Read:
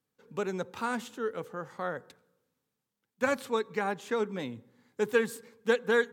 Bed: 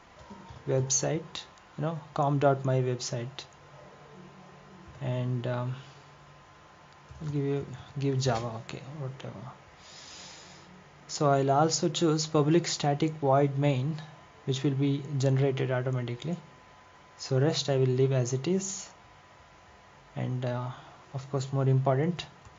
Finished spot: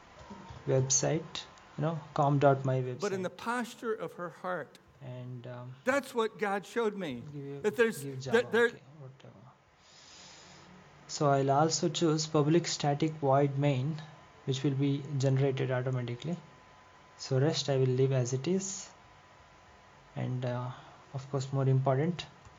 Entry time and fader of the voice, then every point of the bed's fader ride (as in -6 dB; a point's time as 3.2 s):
2.65 s, -1.0 dB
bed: 2.6 s -0.5 dB
3.09 s -12 dB
9.47 s -12 dB
10.65 s -2.5 dB